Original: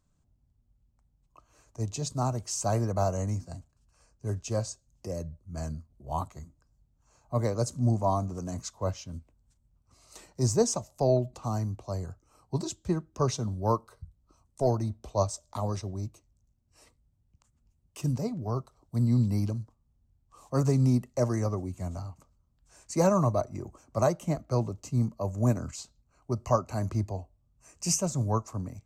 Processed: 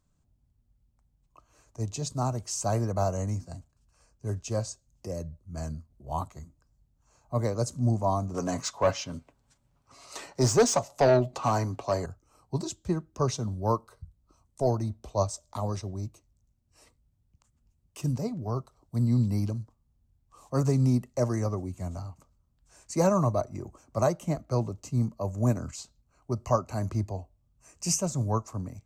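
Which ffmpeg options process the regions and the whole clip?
-filter_complex "[0:a]asettb=1/sr,asplit=3[s0][s1][s2];[s0]atrim=end=8.344[s3];[s1]atrim=start=8.34:end=12.06,asetpts=PTS-STARTPTS,afade=t=in:d=0.004:c=qsin,afade=t=out:st=3.716:d=0.004:c=qsin,aecho=1:1:7.2:0.37,atrim=end_sample=164052,asplit=2[s4][s5];[s5]highpass=f=720:p=1,volume=10,asoftclip=type=tanh:threshold=0.266[s6];[s4][s6]amix=inputs=2:normalize=0,lowpass=f=2700:p=1,volume=0.501[s7];[s2]atrim=start=12.056[s8];[s3][s7]acrossfade=d=0.004:c1=hsin:c2=qsin[s9];[s9][s8]acrossfade=d=0.004:c1=qsin:c2=hsin"

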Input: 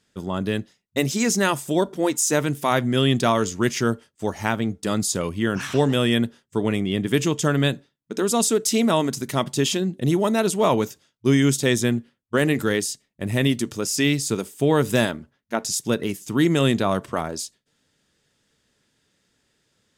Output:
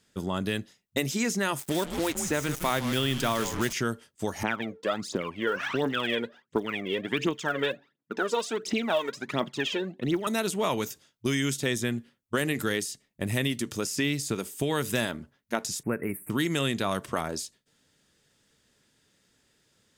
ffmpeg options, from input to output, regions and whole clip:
-filter_complex "[0:a]asettb=1/sr,asplit=3[s0][s1][s2];[s0]atrim=end=1.594[s3];[s1]atrim=start=1.59:end=3.73,asetpts=PTS-STARTPTS,afade=t=in:d=0.004:c=qsin,afade=t=out:st=2.136:d=0.004:c=qsin,asplit=4[s4][s5][s6][s7];[s5]adelay=155,afreqshift=-130,volume=0.251[s8];[s6]adelay=310,afreqshift=-260,volume=0.0851[s9];[s7]adelay=465,afreqshift=-390,volume=0.0292[s10];[s4][s8][s9][s10]amix=inputs=4:normalize=0,atrim=end_sample=94374,acrusher=bits=4:mix=0:aa=0.5[s11];[s2]atrim=start=3.726[s12];[s3][s11]acrossfade=d=0.004:c1=hsin:c2=qsin[s13];[s13][s12]acrossfade=d=0.004:c1=qsin:c2=hsin,asettb=1/sr,asplit=3[s14][s15][s16];[s14]atrim=end=4.434[s17];[s15]atrim=start=4.43:end=10.27,asetpts=PTS-STARTPTS,afade=t=in:d=0.004:c=qsin,afade=t=out:st=5.836:d=0.004:c=qsin,highpass=290,lowpass=2300,aphaser=in_gain=1:out_gain=1:delay=2.3:decay=0.74:speed=1.4:type=triangular[s18];[s16]atrim=start=10.266[s19];[s17][s18]acrossfade=d=0.004:c1=hsin:c2=qsin[s20];[s20][s19]acrossfade=d=0.004:c1=qsin:c2=hsin,asettb=1/sr,asplit=3[s21][s22][s23];[s21]atrim=end=15.834[s24];[s22]atrim=start=15.83:end=16.3,asetpts=PTS-STARTPTS,afade=t=in:d=0.004:c=qsin,afade=t=out:st=0.466:d=0.004:c=qsin,asuperstop=centerf=4600:order=12:qfactor=0.76,equalizer=f=7100:w=1.2:g=-9[s25];[s23]atrim=start=16.296[s26];[s24][s25]acrossfade=d=0.004:c1=hsin:c2=qsin[s27];[s27][s26]acrossfade=d=0.004:c1=qsin:c2=hsin,highshelf=f=9900:g=5.5,acrossover=split=1400|2900[s28][s29][s30];[s28]acompressor=threshold=0.0447:ratio=4[s31];[s29]acompressor=threshold=0.0251:ratio=4[s32];[s30]acompressor=threshold=0.0178:ratio=4[s33];[s31][s32][s33]amix=inputs=3:normalize=0"

